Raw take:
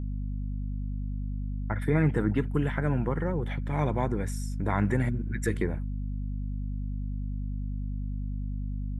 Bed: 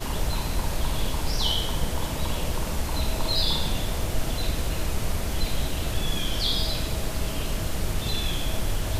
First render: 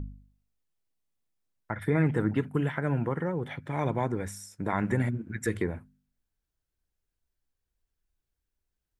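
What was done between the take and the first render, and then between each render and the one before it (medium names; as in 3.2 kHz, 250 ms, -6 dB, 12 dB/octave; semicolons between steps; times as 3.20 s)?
de-hum 50 Hz, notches 5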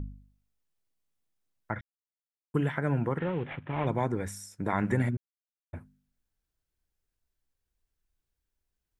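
1.81–2.54 s: mute; 3.18–3.87 s: CVSD coder 16 kbps; 5.17–5.73 s: mute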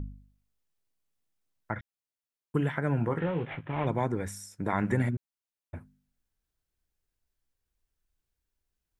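2.97–3.67 s: doubling 18 ms -7.5 dB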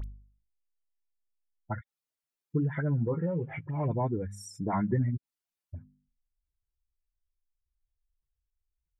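spectral contrast enhancement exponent 1.9; phase dispersion highs, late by 42 ms, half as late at 1.8 kHz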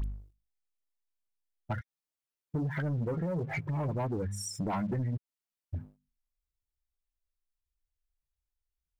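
compression 4:1, threshold -35 dBFS, peak gain reduction 10.5 dB; waveshaping leveller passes 2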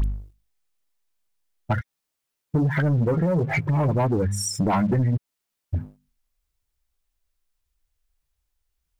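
trim +11 dB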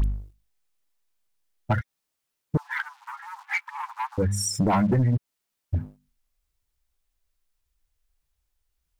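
2.57–4.18 s: steep high-pass 850 Hz 96 dB/octave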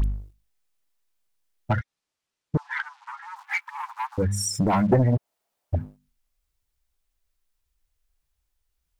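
1.72–3.36 s: low-pass 7.1 kHz; 4.92–5.76 s: peaking EQ 670 Hz +14 dB 1.3 oct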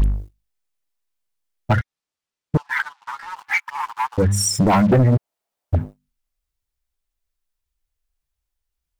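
waveshaping leveller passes 2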